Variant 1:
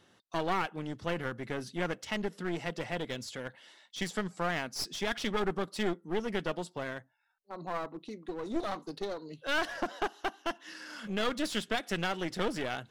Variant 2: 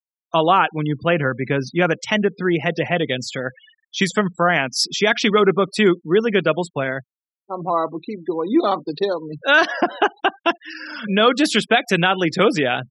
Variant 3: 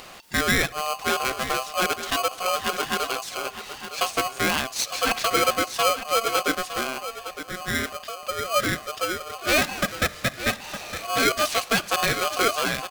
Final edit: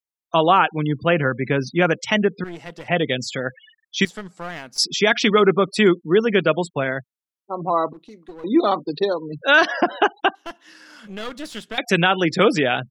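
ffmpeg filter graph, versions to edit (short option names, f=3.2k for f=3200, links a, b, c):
-filter_complex "[0:a]asplit=4[a][b][c][d];[1:a]asplit=5[e][f][g][h][i];[e]atrim=end=2.442[j];[a]atrim=start=2.438:end=2.882[k];[f]atrim=start=2.878:end=4.052[l];[b]atrim=start=4.048:end=4.782[m];[g]atrim=start=4.778:end=7.932[n];[c]atrim=start=7.928:end=8.442[o];[h]atrim=start=8.438:end=10.352[p];[d]atrim=start=10.348:end=11.782[q];[i]atrim=start=11.778[r];[j][k]acrossfade=d=0.004:c1=hsin:c2=hsin[s];[s][l]acrossfade=d=0.004:c1=hsin:c2=hsin[t];[t][m]acrossfade=d=0.004:c1=hsin:c2=hsin[u];[u][n]acrossfade=d=0.004:c1=hsin:c2=hsin[v];[v][o]acrossfade=d=0.004:c1=hsin:c2=hsin[w];[w][p]acrossfade=d=0.004:c1=hsin:c2=hsin[x];[x][q]acrossfade=d=0.004:c1=hsin:c2=hsin[y];[y][r]acrossfade=d=0.004:c1=hsin:c2=hsin"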